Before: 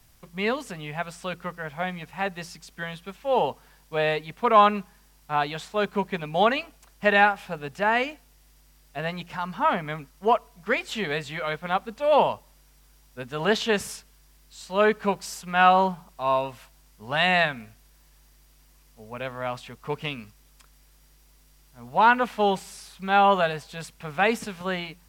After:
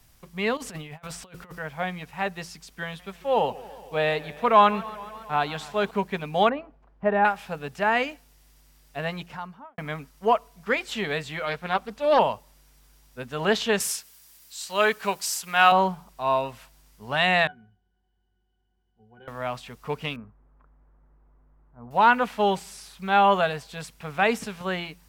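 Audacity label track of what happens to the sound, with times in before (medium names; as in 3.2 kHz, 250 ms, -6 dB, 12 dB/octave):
0.570000	1.590000	compressor with a negative ratio -39 dBFS, ratio -0.5
2.850000	5.910000	modulated delay 140 ms, feedback 75%, depth 125 cents, level -19.5 dB
6.490000	7.250000	low-pass 1 kHz
9.140000	9.780000	studio fade out
11.450000	12.190000	loudspeaker Doppler distortion depth 0.25 ms
13.800000	15.720000	tilt EQ +3 dB/octave
17.470000	19.280000	pitch-class resonator F#, decay 0.14 s
20.160000	21.910000	low-pass 1.3 kHz 24 dB/octave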